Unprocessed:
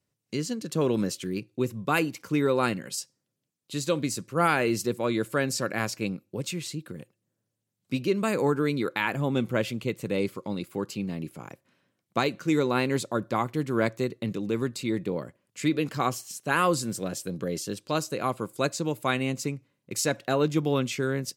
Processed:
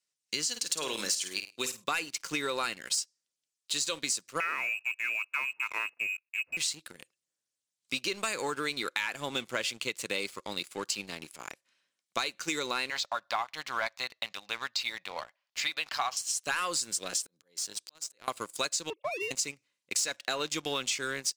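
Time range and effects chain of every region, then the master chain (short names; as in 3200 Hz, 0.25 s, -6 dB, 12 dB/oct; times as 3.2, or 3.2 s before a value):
0.49–1.84 tilt +2 dB/oct + flutter echo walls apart 8.9 m, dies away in 0.33 s
4.4–6.57 G.711 law mismatch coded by A + bell 470 Hz -12 dB 2.9 oct + inverted band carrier 2700 Hz
12.9–16.17 LPF 5300 Hz 24 dB/oct + resonant low shelf 530 Hz -11 dB, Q 3
17.22–18.28 bell 2600 Hz -4.5 dB 0.67 oct + compressor 10:1, threshold -28 dBFS + auto swell 0.583 s
18.9–19.31 sine-wave speech + Butterworth band-stop 1600 Hz, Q 0.59
whole clip: weighting filter ITU-R 468; sample leveller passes 2; compressor, threshold -23 dBFS; gain -5.5 dB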